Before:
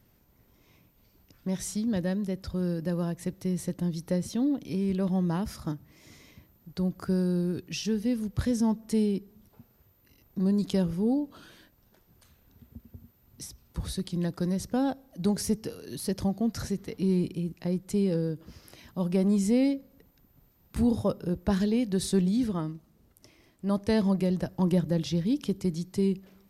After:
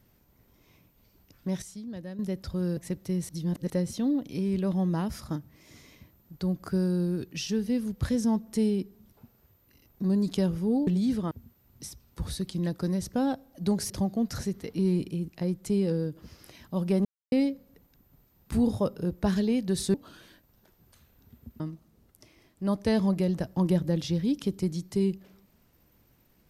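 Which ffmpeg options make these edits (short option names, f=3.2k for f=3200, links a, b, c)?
-filter_complex "[0:a]asplit=13[a][b][c][d][e][f][g][h][i][j][k][l][m];[a]atrim=end=1.622[n];[b]atrim=start=1.618:end=2.192,asetpts=PTS-STARTPTS,volume=-10.5dB[o];[c]atrim=start=2.188:end=2.772[p];[d]atrim=start=3.128:end=3.652[q];[e]atrim=start=3.648:end=4.062,asetpts=PTS-STARTPTS,areverse[r];[f]atrim=start=4.058:end=11.232[s];[g]atrim=start=22.178:end=22.622[t];[h]atrim=start=12.888:end=15.482[u];[i]atrim=start=16.138:end=19.29,asetpts=PTS-STARTPTS,afade=t=out:st=3.148:d=0.004:c=hsin[v];[j]atrim=start=19.29:end=19.56,asetpts=PTS-STARTPTS,volume=0[w];[k]atrim=start=19.56:end=22.182,asetpts=PTS-STARTPTS,afade=t=in:d=0.004:c=hsin[x];[l]atrim=start=11.228:end=12.892[y];[m]atrim=start=22.618[z];[n][o]acrossfade=d=0.004:c1=hsin:c2=hsin[aa];[aa][p]acrossfade=d=0.004:c1=hsin:c2=hsin[ab];[ab][q]acrossfade=d=0.004:c1=hsin:c2=hsin[ac];[ac][r]acrossfade=d=0.004:c1=hsin:c2=hsin[ad];[ad][s]acrossfade=d=0.004:c1=hsin:c2=hsin[ae];[ae][t]acrossfade=d=0.004:c1=hsin:c2=hsin[af];[af][u]acrossfade=d=0.004:c1=hsin:c2=hsin[ag];[v][w][x]concat=n=3:v=0:a=1[ah];[ag][ah]acrossfade=d=0.004:c1=hsin:c2=hsin[ai];[ai][y]acrossfade=d=0.004:c1=hsin:c2=hsin[aj];[aj][z]acrossfade=d=0.004:c1=hsin:c2=hsin"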